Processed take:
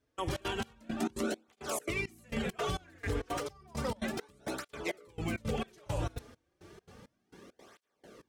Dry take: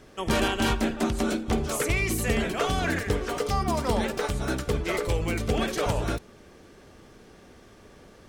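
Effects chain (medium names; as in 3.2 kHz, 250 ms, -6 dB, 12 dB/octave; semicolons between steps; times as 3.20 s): peak limiter -22 dBFS, peak gain reduction 9 dB; trance gate "..xx.xx." 168 bpm -24 dB; cancelling through-zero flanger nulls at 0.32 Hz, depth 5.5 ms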